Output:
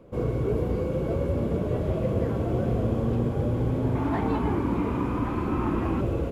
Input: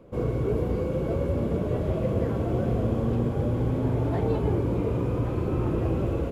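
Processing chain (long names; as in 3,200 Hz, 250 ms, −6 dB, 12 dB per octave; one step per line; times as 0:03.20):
0:03.95–0:06.01: graphic EQ with 10 bands 125 Hz −7 dB, 250 Hz +8 dB, 500 Hz −9 dB, 1,000 Hz +9 dB, 2,000 Hz +5 dB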